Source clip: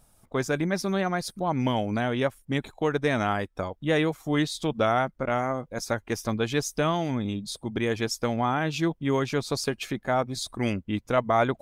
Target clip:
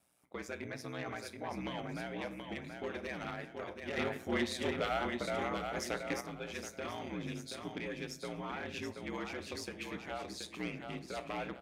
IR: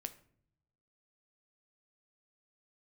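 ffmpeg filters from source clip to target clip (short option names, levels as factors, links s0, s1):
-filter_complex "[0:a]highpass=f=160:w=0.5412,highpass=f=160:w=1.3066,aeval=exprs='0.178*(abs(mod(val(0)/0.178+3,4)-2)-1)':c=same,equalizer=f=2300:t=o:w=0.88:g=8.5,alimiter=limit=0.158:level=0:latency=1:release=367[s0];[1:a]atrim=start_sample=2205[s1];[s0][s1]afir=irnorm=-1:irlink=0,aeval=exprs='val(0)*sin(2*PI*60*n/s)':c=same,aecho=1:1:728|1456|2184|2912:0.447|0.17|0.0645|0.0245,asoftclip=type=tanh:threshold=0.0631,asettb=1/sr,asplit=3[s2][s3][s4];[s2]atrim=end=3.974[s5];[s3]atrim=start=3.97:end=6.21,asetpts=PTS-STARTPTS,afade=t=in:d=0.004:c=qsin,afade=t=out:st=2.236:d=0.004:c=qsin,acontrast=54[s6];[s4]atrim=start=6.206[s7];[s5][s6]acrossfade=d=0.004:c1=hsin:c2=qsin[s8];[s8][s7]acrossfade=d=0.004:c1=qsin:c2=hsin,volume=0.501"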